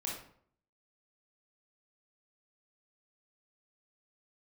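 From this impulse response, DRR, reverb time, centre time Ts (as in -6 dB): -3.5 dB, 0.60 s, 43 ms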